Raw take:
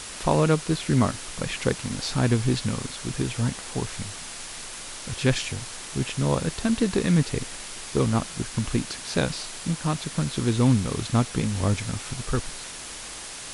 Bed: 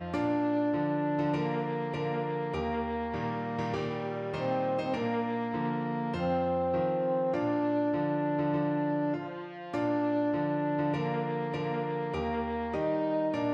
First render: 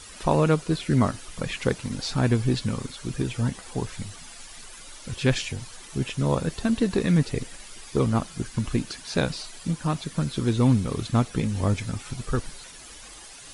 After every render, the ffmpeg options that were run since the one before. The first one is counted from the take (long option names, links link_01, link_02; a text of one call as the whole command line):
ffmpeg -i in.wav -af "afftdn=noise_reduction=11:noise_floor=-38" out.wav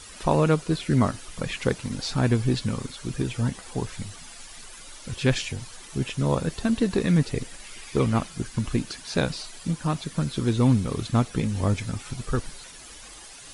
ffmpeg -i in.wav -filter_complex "[0:a]asettb=1/sr,asplit=3[link_01][link_02][link_03];[link_01]atrim=end=7.644[link_04];[link_02]atrim=start=7.64:end=8.28,asetpts=PTS-STARTPTS,afade=type=in:duration=0.004:curve=qsin,afade=type=out:start_time=0.636:duration=0.004:curve=qsin,equalizer=frequency=2300:width_type=o:width=0.86:gain=6.5[link_05];[link_03]atrim=start=8.276[link_06];[link_04][link_05]acrossfade=duration=0.004:curve1=hsin:curve2=qsin[link_07];[link_07][link_06]acrossfade=duration=0.004:curve1=qsin:curve2=hsin" out.wav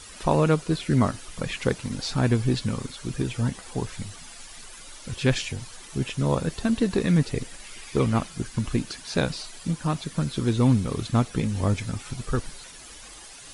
ffmpeg -i in.wav -af anull out.wav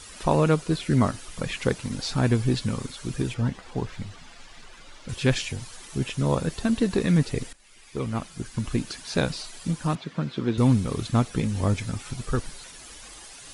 ffmpeg -i in.wav -filter_complex "[0:a]asettb=1/sr,asplit=3[link_01][link_02][link_03];[link_01]atrim=end=3.344[link_04];[link_02]atrim=start=3.34:end=5.09,asetpts=PTS-STARTPTS,afade=type=in:duration=0.004:curve=qsin,afade=type=out:start_time=1.746:duration=0.004:curve=qsin,adynamicsmooth=sensitivity=3.5:basefreq=4300[link_05];[link_03]atrim=start=5.086[link_06];[link_04][link_05]acrossfade=duration=0.004:curve1=hsin:curve2=qsin[link_07];[link_07][link_06]acrossfade=duration=0.004:curve1=qsin:curve2=hsin,asettb=1/sr,asplit=3[link_08][link_09][link_10];[link_08]atrim=end=9.954[link_11];[link_09]atrim=start=9.95:end=10.58,asetpts=PTS-STARTPTS,afade=type=in:duration=0.004:curve=qsin,afade=type=out:start_time=0.626:duration=0.004:curve=qsin,highpass=150,lowpass=3200[link_12];[link_10]atrim=start=10.576[link_13];[link_11][link_12]acrossfade=duration=0.004:curve1=hsin:curve2=qsin[link_14];[link_14][link_13]acrossfade=duration=0.004:curve1=qsin:curve2=hsin,asplit=2[link_15][link_16];[link_15]atrim=end=7.53,asetpts=PTS-STARTPTS,afade=type=out:start_time=7.526:duration=0.004:curve=hsin:silence=0.125893[link_17];[link_16]atrim=start=7.53,asetpts=PTS-STARTPTS,afade=type=in:duration=1.37:silence=0.125893[link_18];[link_17][link_18]concat=n=2:v=0:a=1" out.wav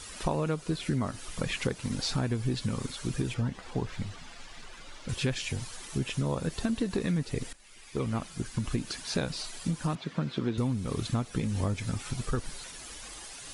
ffmpeg -i in.wav -af "acompressor=threshold=-26dB:ratio=6" out.wav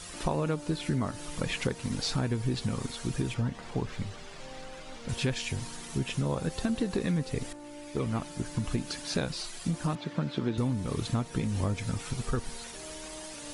ffmpeg -i in.wav -i bed.wav -filter_complex "[1:a]volume=-17dB[link_01];[0:a][link_01]amix=inputs=2:normalize=0" out.wav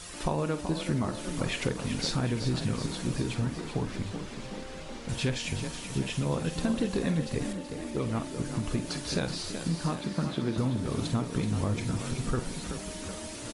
ffmpeg -i in.wav -filter_complex "[0:a]asplit=2[link_01][link_02];[link_02]adelay=48,volume=-12dB[link_03];[link_01][link_03]amix=inputs=2:normalize=0,asplit=9[link_04][link_05][link_06][link_07][link_08][link_09][link_10][link_11][link_12];[link_05]adelay=377,afreqshift=31,volume=-9dB[link_13];[link_06]adelay=754,afreqshift=62,volume=-13dB[link_14];[link_07]adelay=1131,afreqshift=93,volume=-17dB[link_15];[link_08]adelay=1508,afreqshift=124,volume=-21dB[link_16];[link_09]adelay=1885,afreqshift=155,volume=-25.1dB[link_17];[link_10]adelay=2262,afreqshift=186,volume=-29.1dB[link_18];[link_11]adelay=2639,afreqshift=217,volume=-33.1dB[link_19];[link_12]adelay=3016,afreqshift=248,volume=-37.1dB[link_20];[link_04][link_13][link_14][link_15][link_16][link_17][link_18][link_19][link_20]amix=inputs=9:normalize=0" out.wav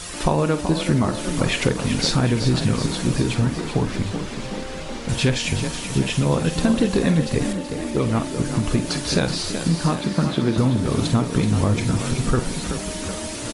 ffmpeg -i in.wav -af "volume=10dB" out.wav